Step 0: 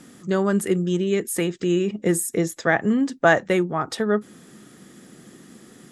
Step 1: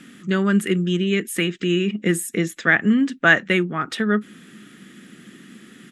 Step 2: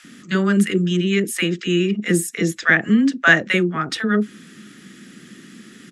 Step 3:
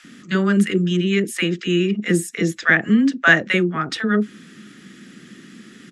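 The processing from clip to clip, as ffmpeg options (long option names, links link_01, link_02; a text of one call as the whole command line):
ffmpeg -i in.wav -af "firequalizer=gain_entry='entry(110,0);entry(200,9);entry(510,-1);entry(840,-3);entry(1400,10);entry(2800,14);entry(4800,2)':delay=0.05:min_phase=1,volume=-4.5dB" out.wav
ffmpeg -i in.wav -filter_complex "[0:a]lowpass=7400,aexciter=amount=1.8:drive=6.9:freq=4500,acrossover=split=720[link_01][link_02];[link_01]adelay=40[link_03];[link_03][link_02]amix=inputs=2:normalize=0,volume=2dB" out.wav
ffmpeg -i in.wav -af "highshelf=frequency=11000:gain=-11.5" out.wav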